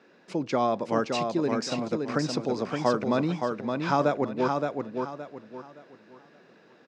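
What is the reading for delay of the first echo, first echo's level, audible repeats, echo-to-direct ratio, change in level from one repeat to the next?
569 ms, −4.5 dB, 3, −4.0 dB, −10.5 dB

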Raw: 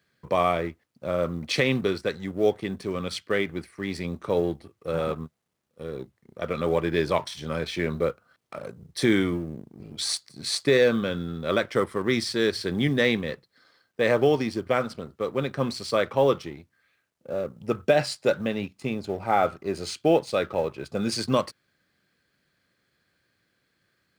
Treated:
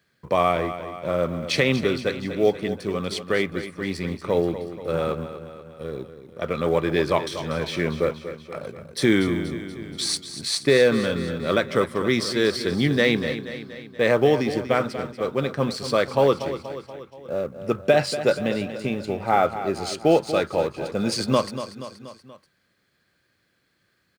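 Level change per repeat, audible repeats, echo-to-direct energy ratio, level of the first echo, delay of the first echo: −4.5 dB, 4, −10.0 dB, −11.5 dB, 239 ms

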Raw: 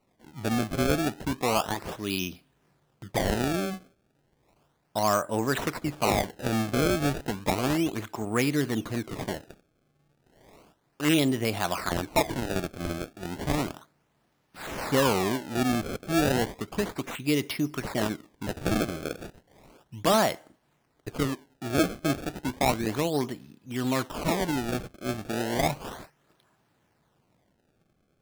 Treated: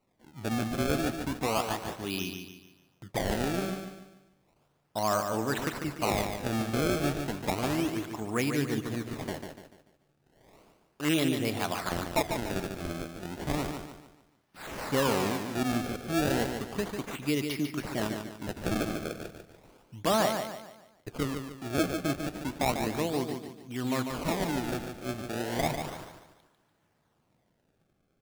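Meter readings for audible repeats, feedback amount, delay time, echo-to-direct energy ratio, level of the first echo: 4, 40%, 146 ms, −5.5 dB, −6.5 dB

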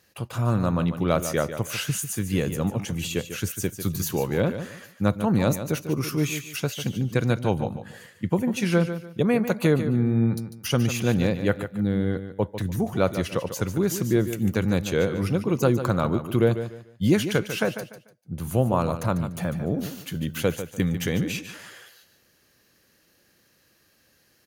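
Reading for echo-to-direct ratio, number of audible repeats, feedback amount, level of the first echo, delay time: −10.0 dB, 3, 27%, −10.5 dB, 147 ms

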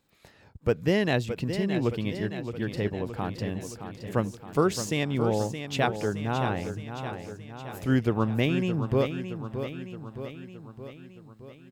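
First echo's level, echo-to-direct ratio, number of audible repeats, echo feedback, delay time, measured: −9.0 dB, −7.0 dB, 6, 59%, 619 ms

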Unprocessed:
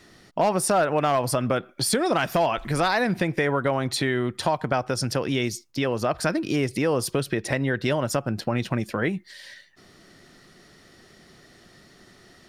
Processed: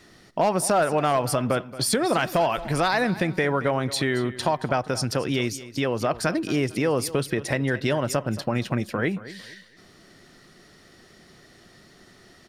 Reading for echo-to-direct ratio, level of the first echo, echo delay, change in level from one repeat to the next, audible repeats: −15.5 dB, −16.0 dB, 226 ms, −10.5 dB, 2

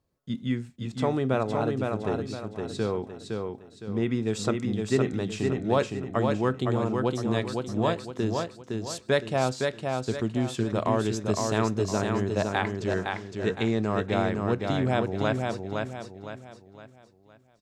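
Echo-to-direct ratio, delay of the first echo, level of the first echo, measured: −3.5 dB, 512 ms, −4.0 dB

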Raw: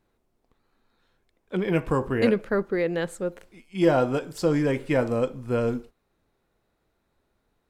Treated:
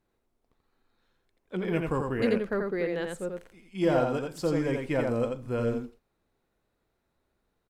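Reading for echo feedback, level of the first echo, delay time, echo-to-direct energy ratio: repeats not evenly spaced, −4.0 dB, 86 ms, −4.0 dB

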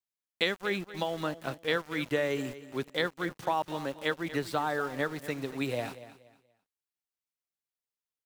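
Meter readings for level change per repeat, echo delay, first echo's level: −11.5 dB, 238 ms, −15.0 dB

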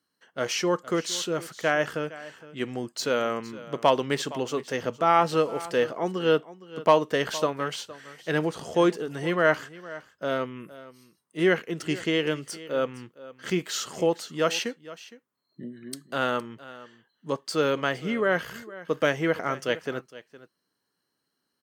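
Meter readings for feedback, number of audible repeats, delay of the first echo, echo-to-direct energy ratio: repeats not evenly spaced, 1, 463 ms, −17.5 dB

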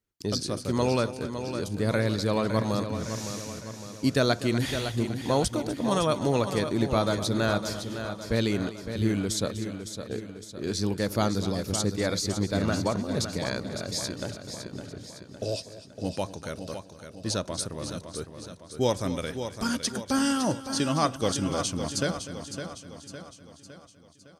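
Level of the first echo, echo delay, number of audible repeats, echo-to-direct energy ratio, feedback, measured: −15.0 dB, 247 ms, 9, −7.0 dB, repeats not evenly spaced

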